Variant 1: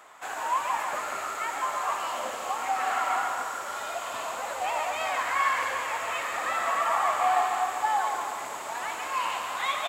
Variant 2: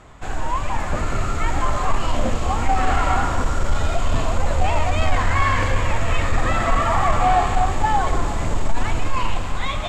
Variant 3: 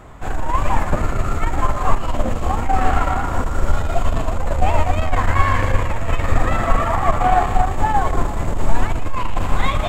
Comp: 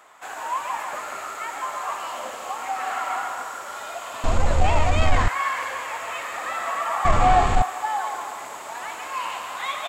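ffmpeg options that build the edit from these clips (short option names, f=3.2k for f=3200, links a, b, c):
-filter_complex "[1:a]asplit=2[a][b];[0:a]asplit=3[c][d][e];[c]atrim=end=4.242[f];[a]atrim=start=4.238:end=5.282[g];[d]atrim=start=5.278:end=7.052[h];[b]atrim=start=7.048:end=7.622[i];[e]atrim=start=7.618[j];[f][g]acrossfade=d=0.004:c1=hsin:c2=hsin[k];[k][h]acrossfade=d=0.004:c1=hsin:c2=hsin[l];[l][i]acrossfade=d=0.004:c1=hsin:c2=hsin[m];[m][j]acrossfade=d=0.004:c1=hsin:c2=hsin"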